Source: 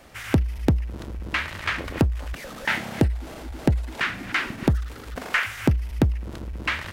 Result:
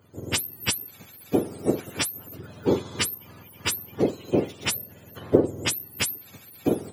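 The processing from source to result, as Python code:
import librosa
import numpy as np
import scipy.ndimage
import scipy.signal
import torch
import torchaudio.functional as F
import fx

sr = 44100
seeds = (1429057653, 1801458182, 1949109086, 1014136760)

y = fx.octave_mirror(x, sr, pivot_hz=880.0)
y = fx.upward_expand(y, sr, threshold_db=-42.0, expansion=1.5)
y = y * 10.0 ** (4.0 / 20.0)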